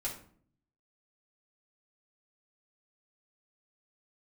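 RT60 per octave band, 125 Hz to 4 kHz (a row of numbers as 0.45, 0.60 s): 0.95, 0.80, 0.60, 0.50, 0.40, 0.35 s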